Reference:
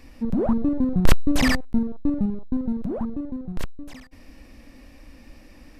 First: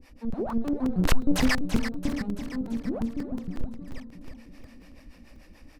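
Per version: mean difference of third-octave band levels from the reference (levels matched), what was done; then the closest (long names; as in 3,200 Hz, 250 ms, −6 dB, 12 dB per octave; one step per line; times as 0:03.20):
6.0 dB: two-band tremolo in antiphase 6.9 Hz, depth 100%, crossover 450 Hz
on a send: repeating echo 336 ms, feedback 59%, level −9.5 dB
on the sum: regular buffer underruns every 0.18 s, samples 128, zero, from 0:00.50
highs frequency-modulated by the lows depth 0.42 ms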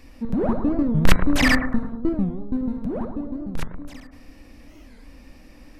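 2.5 dB: bucket-brigade delay 105 ms, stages 1,024, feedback 51%, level −7 dB
dynamic equaliser 1,900 Hz, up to +6 dB, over −42 dBFS, Q 0.77
hum removal 114.3 Hz, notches 20
wow of a warped record 45 rpm, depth 250 cents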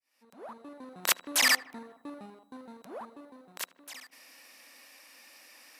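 10.5 dB: fade in at the beginning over 1.32 s
high-pass filter 930 Hz 12 dB per octave
high-shelf EQ 5,600 Hz +10.5 dB
feedback echo with a low-pass in the loop 77 ms, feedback 79%, low-pass 1,900 Hz, level −20.5 dB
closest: second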